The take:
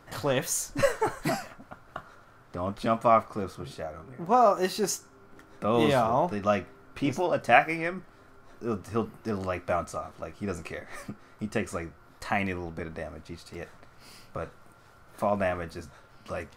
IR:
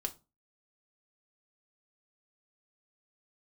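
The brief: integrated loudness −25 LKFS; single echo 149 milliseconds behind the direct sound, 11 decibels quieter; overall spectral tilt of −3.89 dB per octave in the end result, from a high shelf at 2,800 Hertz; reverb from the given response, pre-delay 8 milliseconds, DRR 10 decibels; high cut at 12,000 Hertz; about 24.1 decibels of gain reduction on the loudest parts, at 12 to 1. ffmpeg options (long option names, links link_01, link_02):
-filter_complex "[0:a]lowpass=12000,highshelf=frequency=2800:gain=7.5,acompressor=threshold=-39dB:ratio=12,aecho=1:1:149:0.282,asplit=2[link_01][link_02];[1:a]atrim=start_sample=2205,adelay=8[link_03];[link_02][link_03]afir=irnorm=-1:irlink=0,volume=-10dB[link_04];[link_01][link_04]amix=inputs=2:normalize=0,volume=18.5dB"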